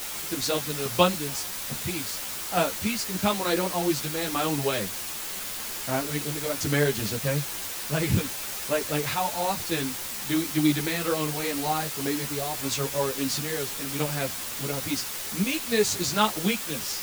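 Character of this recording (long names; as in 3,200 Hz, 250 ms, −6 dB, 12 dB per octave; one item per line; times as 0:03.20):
sample-and-hold tremolo, depth 70%
a quantiser's noise floor 6 bits, dither triangular
a shimmering, thickened sound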